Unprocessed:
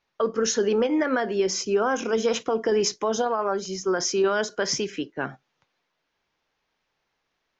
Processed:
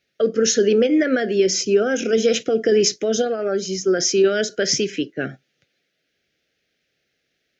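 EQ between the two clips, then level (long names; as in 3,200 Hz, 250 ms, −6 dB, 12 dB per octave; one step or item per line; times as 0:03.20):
high-pass filter 69 Hz
Butterworth band-reject 980 Hz, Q 1
+6.5 dB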